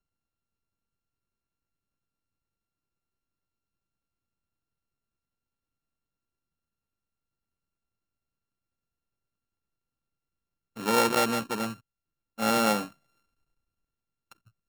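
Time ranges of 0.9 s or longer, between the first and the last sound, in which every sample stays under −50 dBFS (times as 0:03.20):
0:12.92–0:14.32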